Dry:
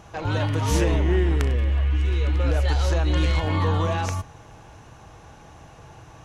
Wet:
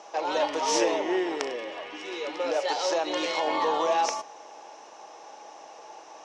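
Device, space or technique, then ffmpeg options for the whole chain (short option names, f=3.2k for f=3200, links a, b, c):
phone speaker on a table: -af "highpass=f=350:w=0.5412,highpass=f=350:w=1.3066,equalizer=f=590:t=q:w=4:g=5,equalizer=f=850:t=q:w=4:g=6,equalizer=f=1.5k:t=q:w=4:g=-5,equalizer=f=5.4k:t=q:w=4:g=9,lowpass=f=7.8k:w=0.5412,lowpass=f=7.8k:w=1.3066"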